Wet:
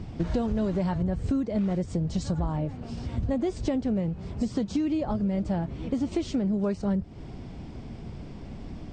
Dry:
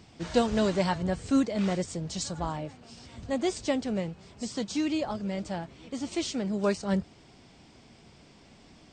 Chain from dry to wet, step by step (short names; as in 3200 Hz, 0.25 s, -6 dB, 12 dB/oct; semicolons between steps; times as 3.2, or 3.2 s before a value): tilt -3.5 dB/oct; in parallel at +2 dB: limiter -17 dBFS, peak gain reduction 10 dB; on the sum: compressor 10:1, threshold -24 dBFS, peak gain reduction 15 dB